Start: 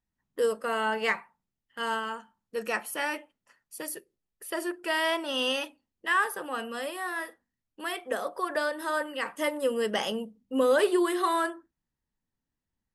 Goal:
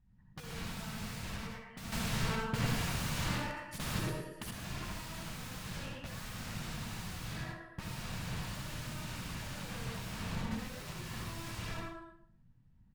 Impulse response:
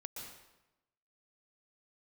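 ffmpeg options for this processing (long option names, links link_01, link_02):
-filter_complex "[0:a]aecho=1:1:115|230|345|460|575:0.2|0.102|0.0519|0.0265|0.0135,asoftclip=type=tanh:threshold=-30dB,aemphasis=mode=reproduction:type=cd,aeval=exprs='(mod(178*val(0)+1,2)-1)/178':channel_layout=same[link_01];[1:a]atrim=start_sample=2205,asetrate=83790,aresample=44100[link_02];[link_01][link_02]afir=irnorm=-1:irlink=0,asettb=1/sr,asplit=3[link_03][link_04][link_05];[link_03]atrim=end=1.924[link_06];[link_04]atrim=start=1.92:end=4.51,asetpts=PTS-STARTPTS,afade=type=in:duration=0.004:curve=qsin,afade=type=out:start_time=2.586:duration=0.004:curve=qsin,acontrast=90[link_07];[link_05]atrim=start=4.506[link_08];[link_06][link_07]acrossfade=duration=0.004:curve1=hsin:curve2=qsin[link_09];[link_09][link_08]acrossfade=duration=0.004:curve1=qsin:curve2=hsin,lowpass=frequency=3000:poles=1,lowshelf=frequency=240:width_type=q:width=1.5:gain=13,volume=17dB"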